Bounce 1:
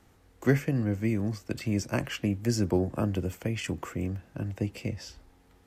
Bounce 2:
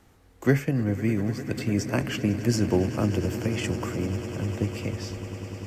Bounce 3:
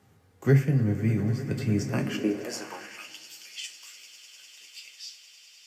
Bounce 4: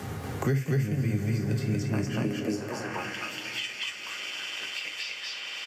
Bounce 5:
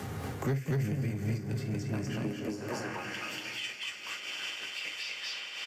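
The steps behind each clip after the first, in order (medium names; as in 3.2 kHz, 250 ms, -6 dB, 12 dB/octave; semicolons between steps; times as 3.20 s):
echo with a slow build-up 100 ms, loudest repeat 8, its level -17.5 dB; trim +2.5 dB
high-pass sweep 120 Hz -> 3.7 kHz, 1.89–3.17 s; on a send at -3 dB: reverberation, pre-delay 3 ms; on the sum: trim -5.5 dB
on a send: loudspeakers at several distances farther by 18 m -12 dB, 81 m 0 dB; on the sum: three bands compressed up and down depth 100%; trim -5 dB
saturation -23.5 dBFS, distortion -15 dB; random flutter of the level, depth 65%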